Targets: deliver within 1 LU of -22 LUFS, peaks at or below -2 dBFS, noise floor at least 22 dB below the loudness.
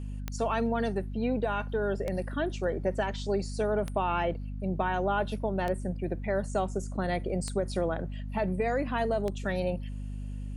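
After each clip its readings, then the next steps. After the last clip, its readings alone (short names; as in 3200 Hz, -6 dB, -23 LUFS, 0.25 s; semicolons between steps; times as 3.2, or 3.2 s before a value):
clicks 6; hum 50 Hz; harmonics up to 250 Hz; hum level -34 dBFS; loudness -31.0 LUFS; peak -16.0 dBFS; loudness target -22.0 LUFS
-> de-click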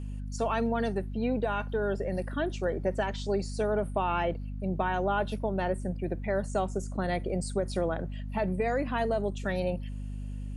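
clicks 0; hum 50 Hz; harmonics up to 250 Hz; hum level -34 dBFS
-> de-hum 50 Hz, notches 5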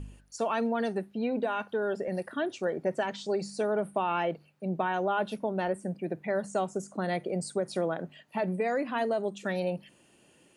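hum none; loudness -31.5 LUFS; peak -16.5 dBFS; loudness target -22.0 LUFS
-> gain +9.5 dB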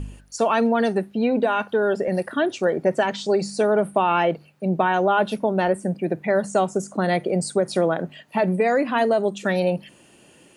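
loudness -22.0 LUFS; peak -7.0 dBFS; noise floor -53 dBFS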